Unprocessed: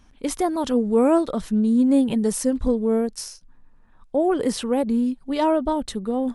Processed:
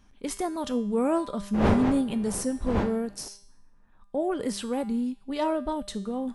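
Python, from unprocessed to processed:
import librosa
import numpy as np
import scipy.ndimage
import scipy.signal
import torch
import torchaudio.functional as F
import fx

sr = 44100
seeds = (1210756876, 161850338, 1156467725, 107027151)

y = fx.dmg_wind(x, sr, seeds[0], corner_hz=560.0, level_db=-26.0, at=(1.53, 3.27), fade=0.02)
y = fx.dynamic_eq(y, sr, hz=480.0, q=0.72, threshold_db=-29.0, ratio=4.0, max_db=-3)
y = fx.comb_fb(y, sr, f0_hz=200.0, decay_s=0.65, harmonics='all', damping=0.0, mix_pct=70)
y = F.gain(torch.from_numpy(y), 4.5).numpy()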